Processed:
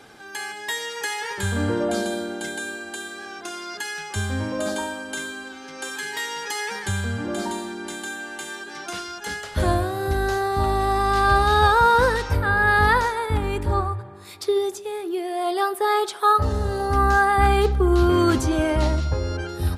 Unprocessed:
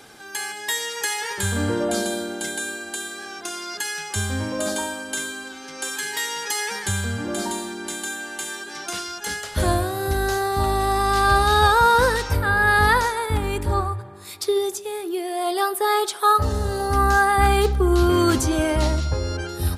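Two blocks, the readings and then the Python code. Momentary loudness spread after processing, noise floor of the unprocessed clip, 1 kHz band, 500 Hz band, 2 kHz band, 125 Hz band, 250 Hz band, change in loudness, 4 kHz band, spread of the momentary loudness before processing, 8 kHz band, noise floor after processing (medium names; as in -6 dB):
15 LU, -38 dBFS, -0.5 dB, 0.0 dB, -1.0 dB, 0.0 dB, 0.0 dB, -0.5 dB, -3.5 dB, 13 LU, -7.0 dB, -39 dBFS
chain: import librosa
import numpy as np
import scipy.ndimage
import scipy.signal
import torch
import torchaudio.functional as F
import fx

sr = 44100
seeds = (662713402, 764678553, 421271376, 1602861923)

y = fx.high_shelf(x, sr, hz=5100.0, db=-9.5)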